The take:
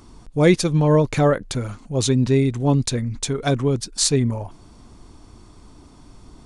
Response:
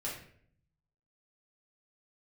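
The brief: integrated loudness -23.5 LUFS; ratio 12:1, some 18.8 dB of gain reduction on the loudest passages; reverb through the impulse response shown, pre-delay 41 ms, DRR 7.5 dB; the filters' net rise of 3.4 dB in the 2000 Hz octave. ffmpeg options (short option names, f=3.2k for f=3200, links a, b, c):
-filter_complex "[0:a]equalizer=f=2k:t=o:g=4,acompressor=threshold=-28dB:ratio=12,asplit=2[a][b];[1:a]atrim=start_sample=2205,adelay=41[c];[b][c]afir=irnorm=-1:irlink=0,volume=-9.5dB[d];[a][d]amix=inputs=2:normalize=0,volume=8.5dB"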